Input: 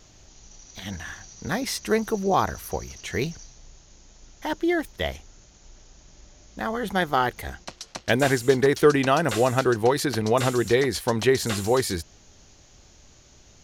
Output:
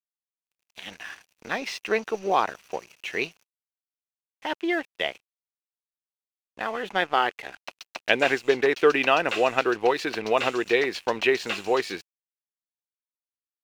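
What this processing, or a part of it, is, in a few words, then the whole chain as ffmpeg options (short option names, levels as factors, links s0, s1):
pocket radio on a weak battery: -af "highpass=360,lowpass=4200,aeval=exprs='sgn(val(0))*max(abs(val(0))-0.00473,0)':c=same,equalizer=f=2600:t=o:w=0.38:g=11.5"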